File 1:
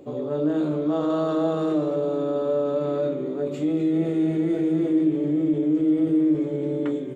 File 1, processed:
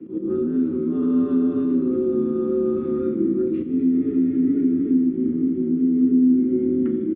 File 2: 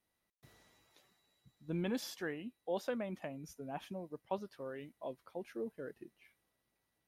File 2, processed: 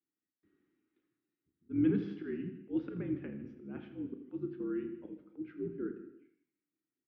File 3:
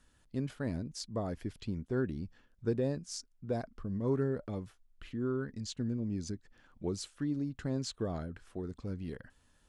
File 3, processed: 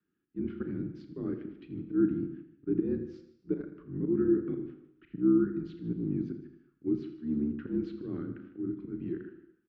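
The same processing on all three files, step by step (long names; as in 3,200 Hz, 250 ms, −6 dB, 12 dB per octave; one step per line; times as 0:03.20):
sub-octave generator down 2 octaves, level +3 dB
noise gate −52 dBFS, range −13 dB
low shelf with overshoot 500 Hz +6.5 dB, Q 3
downward compressor 4 to 1, threshold −16 dBFS
frequency shifter −59 Hz
volume swells 114 ms
loudspeaker in its box 180–2,700 Hz, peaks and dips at 320 Hz +9 dB, 660 Hz −9 dB, 950 Hz −7 dB, 1,400 Hz +5 dB
double-tracking delay 35 ms −13 dB
on a send: multi-tap delay 83/154 ms −14/−17 dB
on the sum: reverb whose tail is shaped and stops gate 390 ms falling, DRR 9.5 dB
level −4 dB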